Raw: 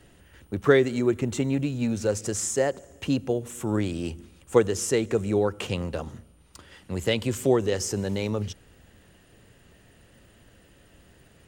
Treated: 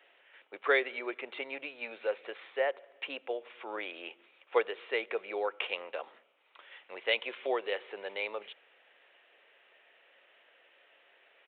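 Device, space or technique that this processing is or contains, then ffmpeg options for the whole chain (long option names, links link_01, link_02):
musical greeting card: -af "aresample=8000,aresample=44100,highpass=frequency=520:width=0.5412,highpass=frequency=520:width=1.3066,equalizer=frequency=2300:width_type=o:width=0.41:gain=8,volume=-3.5dB"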